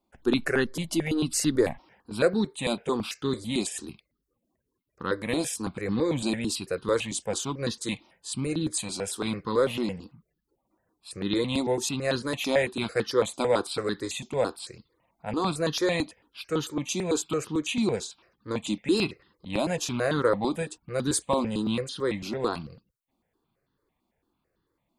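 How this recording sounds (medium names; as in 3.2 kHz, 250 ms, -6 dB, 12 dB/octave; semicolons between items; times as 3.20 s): notches that jump at a steady rate 9 Hz 460–2300 Hz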